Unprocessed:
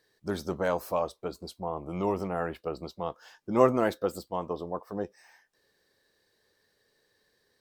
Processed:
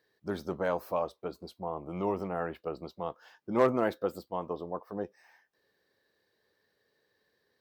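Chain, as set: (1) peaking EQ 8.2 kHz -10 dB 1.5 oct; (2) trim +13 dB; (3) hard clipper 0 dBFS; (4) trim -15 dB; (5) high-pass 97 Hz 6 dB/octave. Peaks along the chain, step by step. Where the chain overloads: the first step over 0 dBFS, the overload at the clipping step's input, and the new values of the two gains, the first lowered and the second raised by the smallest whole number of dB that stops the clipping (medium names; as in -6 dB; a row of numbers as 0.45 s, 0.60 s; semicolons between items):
-7.0 dBFS, +6.0 dBFS, 0.0 dBFS, -15.0 dBFS, -13.5 dBFS; step 2, 6.0 dB; step 2 +7 dB, step 4 -9 dB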